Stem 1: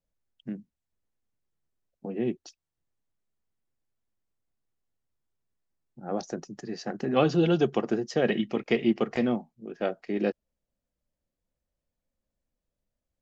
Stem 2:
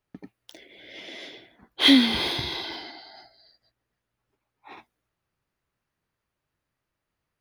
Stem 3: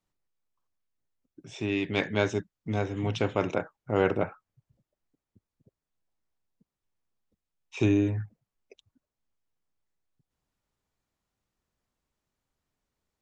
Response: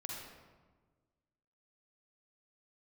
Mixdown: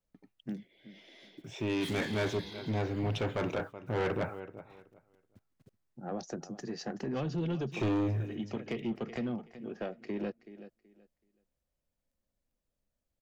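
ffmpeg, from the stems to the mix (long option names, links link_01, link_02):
-filter_complex "[0:a]acrossover=split=170[link_01][link_02];[link_02]acompressor=threshold=-33dB:ratio=4[link_03];[link_01][link_03]amix=inputs=2:normalize=0,volume=-1dB,asplit=2[link_04][link_05];[link_05]volume=-15.5dB[link_06];[1:a]asoftclip=type=hard:threshold=-23dB,volume=-16dB[link_07];[2:a]highshelf=frequency=5400:gain=-10,acrusher=bits=11:mix=0:aa=0.000001,volume=1dB,asplit=3[link_08][link_09][link_10];[link_09]volume=-20.5dB[link_11];[link_10]apad=whole_len=582634[link_12];[link_04][link_12]sidechaincompress=threshold=-45dB:ratio=8:attack=16:release=208[link_13];[link_06][link_11]amix=inputs=2:normalize=0,aecho=0:1:377|754|1131:1|0.21|0.0441[link_14];[link_13][link_07][link_08][link_14]amix=inputs=4:normalize=0,asoftclip=type=tanh:threshold=-26.5dB"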